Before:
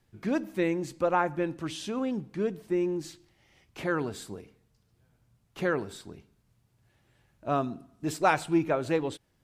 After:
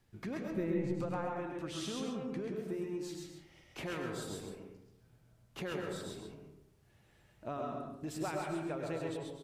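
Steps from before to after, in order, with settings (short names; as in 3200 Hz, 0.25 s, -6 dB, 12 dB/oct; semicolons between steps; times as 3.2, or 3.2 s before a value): compressor 4:1, threshold -38 dBFS, peak gain reduction 16.5 dB; 0.5–0.95 RIAA curve playback; loudspeakers at several distances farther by 35 m -11 dB, 46 m -4 dB; reverb RT60 0.85 s, pre-delay 75 ms, DRR 3 dB; gain -2 dB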